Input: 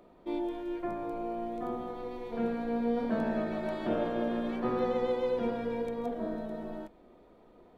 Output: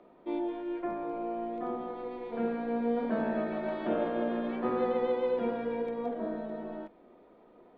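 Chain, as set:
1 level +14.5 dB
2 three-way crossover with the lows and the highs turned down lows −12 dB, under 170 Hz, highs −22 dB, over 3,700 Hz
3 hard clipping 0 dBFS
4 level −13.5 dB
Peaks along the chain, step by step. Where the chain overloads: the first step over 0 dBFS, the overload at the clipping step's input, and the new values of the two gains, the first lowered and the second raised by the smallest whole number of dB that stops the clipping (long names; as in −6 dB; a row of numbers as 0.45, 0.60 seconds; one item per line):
−3.5, −5.0, −5.0, −18.5 dBFS
no step passes full scale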